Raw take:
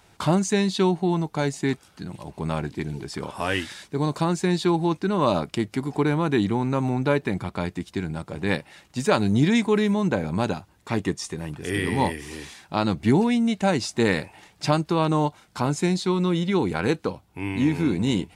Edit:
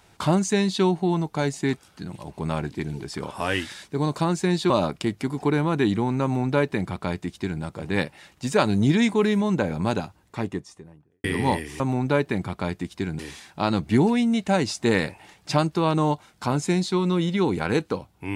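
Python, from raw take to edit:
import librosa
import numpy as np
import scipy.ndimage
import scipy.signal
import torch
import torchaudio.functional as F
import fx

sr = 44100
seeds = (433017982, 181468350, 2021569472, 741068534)

y = fx.studio_fade_out(x, sr, start_s=10.53, length_s=1.24)
y = fx.edit(y, sr, fx.cut(start_s=4.7, length_s=0.53),
    fx.duplicate(start_s=6.76, length_s=1.39, to_s=12.33), tone=tone)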